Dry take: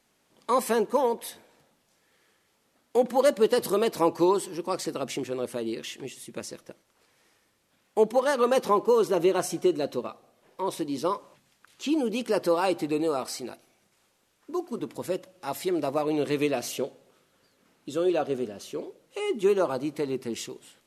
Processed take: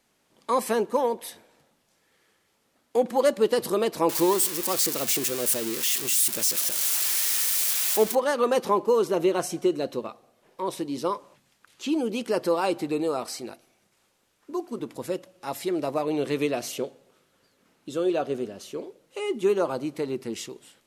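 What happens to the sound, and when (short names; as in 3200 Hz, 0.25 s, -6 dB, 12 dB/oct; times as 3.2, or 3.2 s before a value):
4.09–8.15 switching spikes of -17 dBFS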